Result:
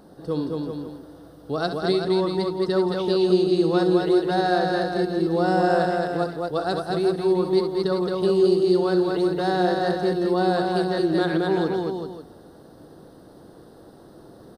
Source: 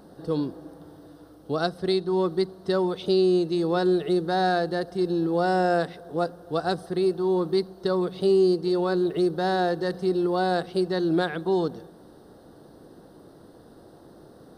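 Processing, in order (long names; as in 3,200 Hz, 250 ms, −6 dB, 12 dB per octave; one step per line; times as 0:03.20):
multi-tap delay 66/167/221/385/538 ms −10/−18/−3/−7/−14 dB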